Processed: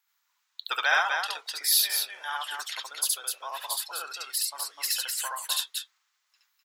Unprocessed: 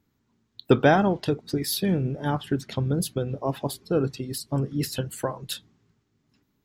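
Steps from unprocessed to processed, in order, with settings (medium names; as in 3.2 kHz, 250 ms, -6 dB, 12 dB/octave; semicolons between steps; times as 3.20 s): high-pass 1 kHz 24 dB/octave; tilt EQ +1.5 dB/octave; on a send: loudspeakers at several distances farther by 24 m 0 dB, 87 m -4 dB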